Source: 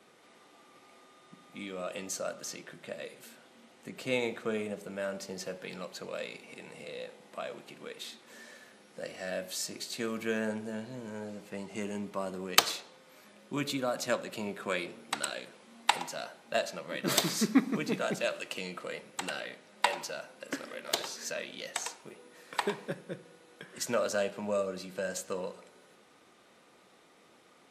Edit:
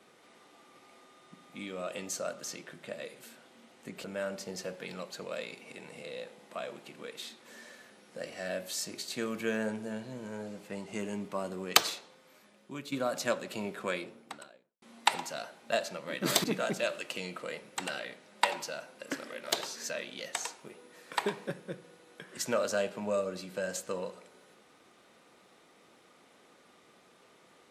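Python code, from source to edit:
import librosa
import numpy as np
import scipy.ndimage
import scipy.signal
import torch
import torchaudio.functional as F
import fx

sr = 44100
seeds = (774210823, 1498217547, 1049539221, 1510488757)

y = fx.studio_fade_out(x, sr, start_s=14.55, length_s=1.09)
y = fx.edit(y, sr, fx.cut(start_s=4.04, length_s=0.82),
    fx.fade_out_to(start_s=12.63, length_s=1.11, floor_db=-11.0),
    fx.cut(start_s=17.26, length_s=0.59), tone=tone)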